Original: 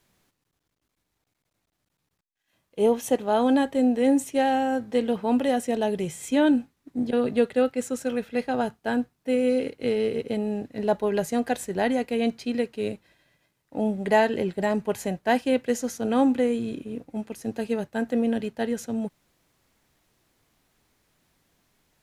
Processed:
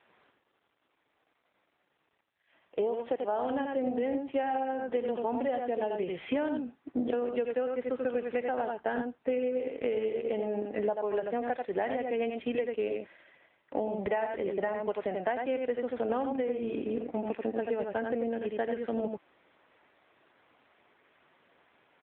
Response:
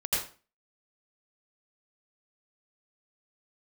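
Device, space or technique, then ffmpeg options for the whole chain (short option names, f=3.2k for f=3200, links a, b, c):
voicemail: -filter_complex "[0:a]asettb=1/sr,asplit=3[a][b][c];[a]atrim=end=4.824[d];[b]atrim=start=4.82:end=5.37,asetpts=PTS-STARTPTS,afade=t=in:d=0.004:c=qsin,afade=t=out:st=0.546:d=0.004:c=qsin,lowshelf=f=100:g=3.5[e];[c]atrim=start=5.366[f];[d][e]acrossfade=d=0.004:c1=hsin:c2=qsin[g];[g][f]acrossfade=d=0.004:c1=qsin:c2=hsin,highpass=400,lowpass=2.7k,aecho=1:1:87:0.531,acompressor=threshold=-36dB:ratio=12,volume=9dB" -ar 8000 -c:a libopencore_amrnb -b:a 7950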